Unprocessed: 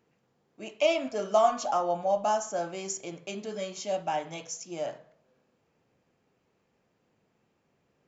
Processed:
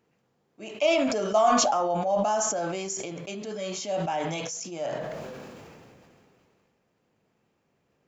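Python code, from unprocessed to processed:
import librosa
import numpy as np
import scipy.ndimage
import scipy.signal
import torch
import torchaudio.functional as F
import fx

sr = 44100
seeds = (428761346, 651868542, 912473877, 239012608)

y = fx.sustainer(x, sr, db_per_s=22.0)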